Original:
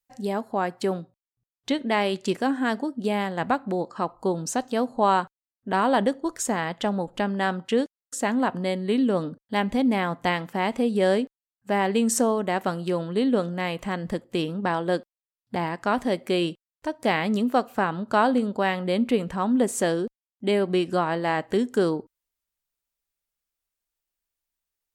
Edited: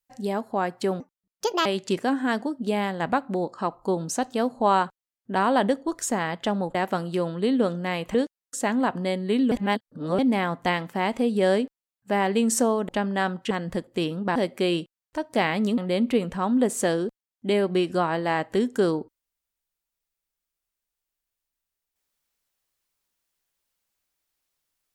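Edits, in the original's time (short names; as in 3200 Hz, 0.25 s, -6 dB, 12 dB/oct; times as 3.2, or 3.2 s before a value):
1–2.03 speed 157%
7.12–7.74 swap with 12.48–13.88
9.11–9.78 reverse
14.73–16.05 cut
17.47–18.76 cut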